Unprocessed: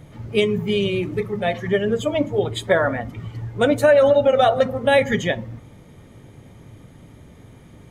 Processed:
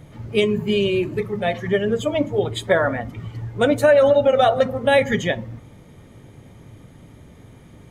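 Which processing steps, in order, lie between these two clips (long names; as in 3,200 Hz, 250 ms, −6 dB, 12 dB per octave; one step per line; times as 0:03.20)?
0:00.43–0:01.19: EQ curve with evenly spaced ripples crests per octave 1.4, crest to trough 7 dB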